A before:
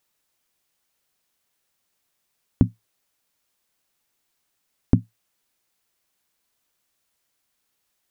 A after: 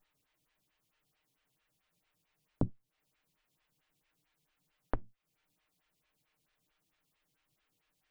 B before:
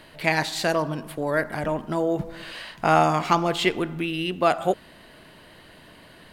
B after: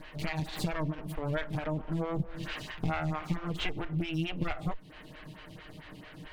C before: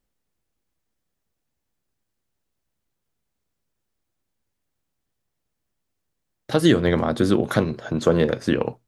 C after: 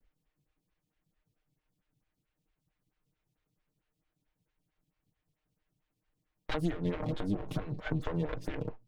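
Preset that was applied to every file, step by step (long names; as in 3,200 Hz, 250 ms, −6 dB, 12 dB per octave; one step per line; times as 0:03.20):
lower of the sound and its delayed copy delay 6.5 ms
bass and treble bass +14 dB, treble −5 dB
downward compressor 16 to 1, threshold −26 dBFS
parametric band 2,700 Hz +6.5 dB 1.8 octaves
phaser with staggered stages 4.5 Hz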